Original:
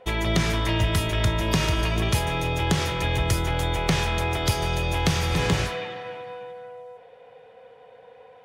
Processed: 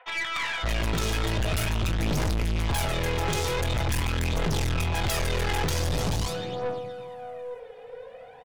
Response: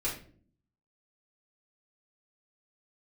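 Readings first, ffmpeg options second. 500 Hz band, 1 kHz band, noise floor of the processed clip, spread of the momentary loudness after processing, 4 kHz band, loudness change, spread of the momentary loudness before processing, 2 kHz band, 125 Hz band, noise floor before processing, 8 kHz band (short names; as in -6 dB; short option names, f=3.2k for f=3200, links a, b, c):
-2.0 dB, -3.5 dB, -46 dBFS, 12 LU, -3.5 dB, -3.5 dB, 14 LU, -2.5 dB, -3.5 dB, -50 dBFS, -1.0 dB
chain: -filter_complex "[0:a]acrossover=split=980|3300[a][b][c];[a]adelay=570[d];[c]adelay=620[e];[d][b][e]amix=inputs=3:normalize=0,aphaser=in_gain=1:out_gain=1:delay=2.5:decay=0.58:speed=0.45:type=triangular,aeval=exprs='(tanh(31.6*val(0)+0.45)-tanh(0.45))/31.6':c=same,volume=5.5dB"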